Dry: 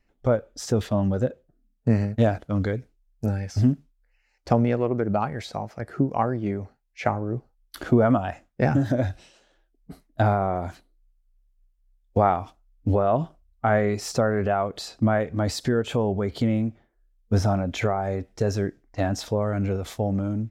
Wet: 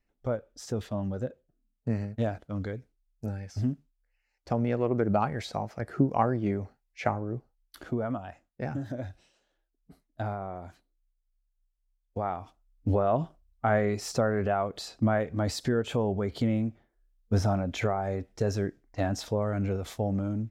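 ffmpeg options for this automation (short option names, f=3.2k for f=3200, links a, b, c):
-af "volume=7dB,afade=t=in:st=4.52:d=0.48:silence=0.421697,afade=t=out:st=6.61:d=1.35:silence=0.281838,afade=t=in:st=12.23:d=0.65:silence=0.375837"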